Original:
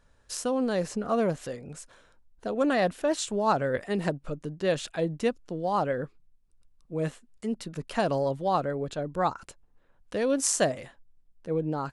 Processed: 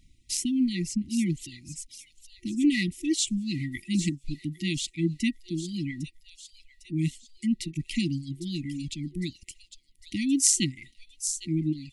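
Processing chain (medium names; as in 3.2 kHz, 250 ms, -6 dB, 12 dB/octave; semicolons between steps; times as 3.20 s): feedback echo behind a high-pass 804 ms, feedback 55%, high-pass 3.3 kHz, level -8.5 dB; reverb removal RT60 1.7 s; FFT band-reject 360–1900 Hz; trim +6 dB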